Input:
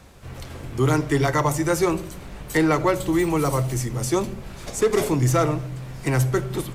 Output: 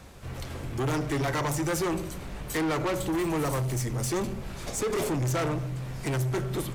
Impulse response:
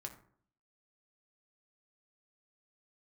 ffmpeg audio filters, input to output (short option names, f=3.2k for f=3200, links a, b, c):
-af "asoftclip=type=tanh:threshold=-25dB"